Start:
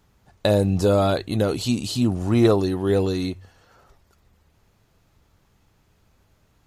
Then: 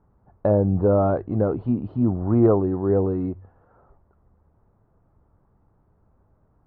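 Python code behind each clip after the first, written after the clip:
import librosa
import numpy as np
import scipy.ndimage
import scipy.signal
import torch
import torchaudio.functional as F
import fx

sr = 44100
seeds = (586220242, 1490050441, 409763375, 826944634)

y = scipy.signal.sosfilt(scipy.signal.butter(4, 1200.0, 'lowpass', fs=sr, output='sos'), x)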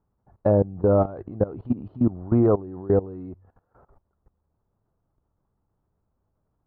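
y = fx.level_steps(x, sr, step_db=19)
y = y * librosa.db_to_amplitude(2.0)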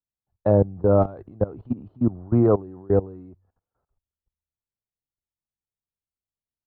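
y = fx.band_widen(x, sr, depth_pct=70)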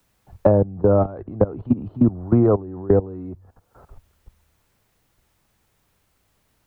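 y = fx.band_squash(x, sr, depth_pct=100)
y = y * librosa.db_to_amplitude(2.5)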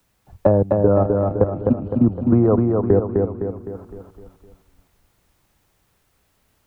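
y = fx.echo_feedback(x, sr, ms=256, feedback_pct=49, wet_db=-3.5)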